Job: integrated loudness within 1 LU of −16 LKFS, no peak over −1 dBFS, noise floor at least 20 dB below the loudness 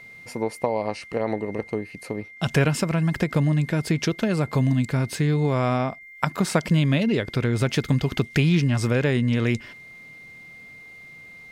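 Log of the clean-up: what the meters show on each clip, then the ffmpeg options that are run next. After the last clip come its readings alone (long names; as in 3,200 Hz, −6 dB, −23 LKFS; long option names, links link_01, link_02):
interfering tone 2,100 Hz; level of the tone −42 dBFS; integrated loudness −23.5 LKFS; sample peak −4.0 dBFS; target loudness −16.0 LKFS
→ -af "bandreject=frequency=2100:width=30"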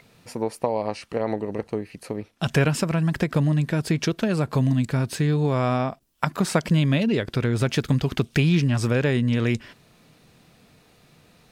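interfering tone none found; integrated loudness −23.5 LKFS; sample peak −4.5 dBFS; target loudness −16.0 LKFS
→ -af "volume=7.5dB,alimiter=limit=-1dB:level=0:latency=1"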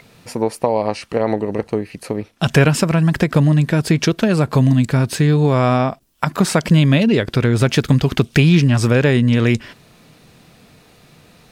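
integrated loudness −16.5 LKFS; sample peak −1.0 dBFS; background noise floor −50 dBFS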